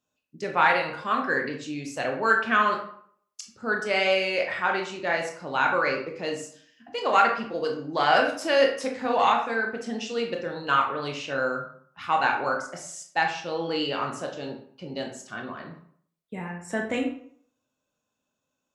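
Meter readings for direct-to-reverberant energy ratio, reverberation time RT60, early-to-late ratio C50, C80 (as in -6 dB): 1.5 dB, 0.60 s, 6.5 dB, 10.5 dB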